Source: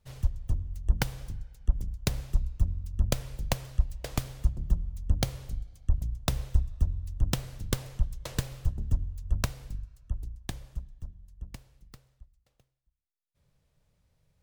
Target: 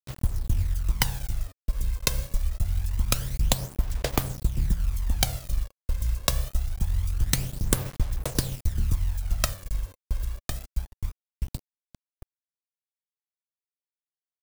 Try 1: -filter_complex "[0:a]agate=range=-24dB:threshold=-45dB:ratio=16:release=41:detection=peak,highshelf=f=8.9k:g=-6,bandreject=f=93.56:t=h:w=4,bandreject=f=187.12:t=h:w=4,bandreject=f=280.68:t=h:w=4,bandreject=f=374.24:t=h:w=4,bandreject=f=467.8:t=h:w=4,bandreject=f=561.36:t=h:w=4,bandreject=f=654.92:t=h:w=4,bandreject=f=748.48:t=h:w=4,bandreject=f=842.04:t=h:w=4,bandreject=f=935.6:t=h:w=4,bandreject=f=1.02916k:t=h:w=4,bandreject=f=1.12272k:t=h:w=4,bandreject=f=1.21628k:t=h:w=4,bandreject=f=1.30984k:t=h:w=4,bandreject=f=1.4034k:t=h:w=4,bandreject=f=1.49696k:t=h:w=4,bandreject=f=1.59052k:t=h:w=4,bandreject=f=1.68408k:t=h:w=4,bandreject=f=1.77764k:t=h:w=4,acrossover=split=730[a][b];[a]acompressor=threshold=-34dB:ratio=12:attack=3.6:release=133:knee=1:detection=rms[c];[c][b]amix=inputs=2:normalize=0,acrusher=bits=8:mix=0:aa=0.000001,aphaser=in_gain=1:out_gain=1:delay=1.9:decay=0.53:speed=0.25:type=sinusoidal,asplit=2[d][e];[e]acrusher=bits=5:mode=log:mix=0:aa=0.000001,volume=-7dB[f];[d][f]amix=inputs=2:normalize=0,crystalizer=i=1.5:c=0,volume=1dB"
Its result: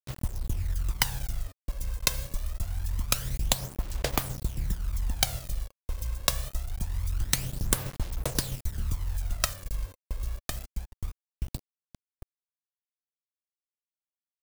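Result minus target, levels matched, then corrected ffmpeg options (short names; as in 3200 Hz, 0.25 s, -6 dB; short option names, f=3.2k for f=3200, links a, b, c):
compressor: peak gain reduction +6.5 dB
-filter_complex "[0:a]agate=range=-24dB:threshold=-45dB:ratio=16:release=41:detection=peak,highshelf=f=8.9k:g=-6,bandreject=f=93.56:t=h:w=4,bandreject=f=187.12:t=h:w=4,bandreject=f=280.68:t=h:w=4,bandreject=f=374.24:t=h:w=4,bandreject=f=467.8:t=h:w=4,bandreject=f=561.36:t=h:w=4,bandreject=f=654.92:t=h:w=4,bandreject=f=748.48:t=h:w=4,bandreject=f=842.04:t=h:w=4,bandreject=f=935.6:t=h:w=4,bandreject=f=1.02916k:t=h:w=4,bandreject=f=1.12272k:t=h:w=4,bandreject=f=1.21628k:t=h:w=4,bandreject=f=1.30984k:t=h:w=4,bandreject=f=1.4034k:t=h:w=4,bandreject=f=1.49696k:t=h:w=4,bandreject=f=1.59052k:t=h:w=4,bandreject=f=1.68408k:t=h:w=4,bandreject=f=1.77764k:t=h:w=4,acrossover=split=730[a][b];[a]acompressor=threshold=-27dB:ratio=12:attack=3.6:release=133:knee=1:detection=rms[c];[c][b]amix=inputs=2:normalize=0,acrusher=bits=8:mix=0:aa=0.000001,aphaser=in_gain=1:out_gain=1:delay=1.9:decay=0.53:speed=0.25:type=sinusoidal,asplit=2[d][e];[e]acrusher=bits=5:mode=log:mix=0:aa=0.000001,volume=-7dB[f];[d][f]amix=inputs=2:normalize=0,crystalizer=i=1.5:c=0,volume=1dB"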